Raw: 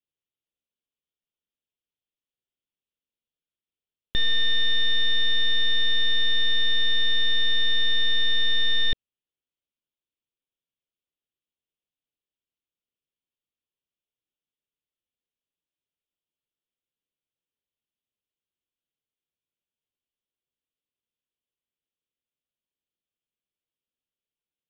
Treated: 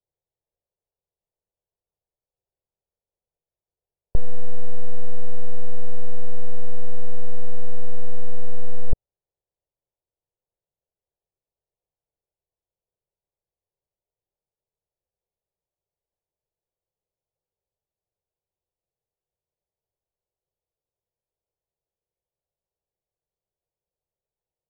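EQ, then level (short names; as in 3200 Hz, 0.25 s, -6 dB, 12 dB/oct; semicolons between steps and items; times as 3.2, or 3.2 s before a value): inverse Chebyshev low-pass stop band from 2700 Hz, stop band 50 dB; air absorption 470 m; fixed phaser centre 620 Hz, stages 4; +11.5 dB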